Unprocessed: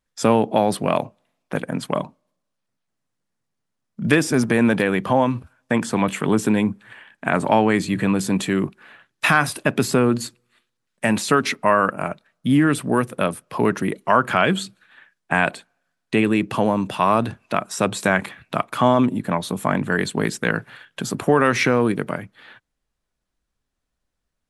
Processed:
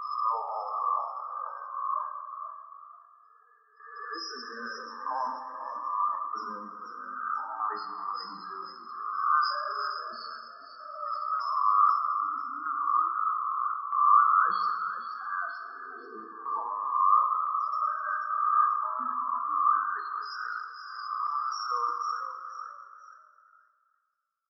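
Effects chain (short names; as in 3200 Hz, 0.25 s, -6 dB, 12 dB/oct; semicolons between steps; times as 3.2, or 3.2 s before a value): spectral swells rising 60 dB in 1.33 s; double band-pass 2500 Hz, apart 2.1 oct; high shelf 3900 Hz -2 dB; loudest bins only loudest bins 8; chopper 0.79 Hz, depth 65%, duty 80%; frequency-shifting echo 0.487 s, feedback 31%, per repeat +46 Hz, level -10 dB; plate-style reverb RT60 2 s, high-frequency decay 0.6×, DRR 4 dB; sustainer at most 65 dB/s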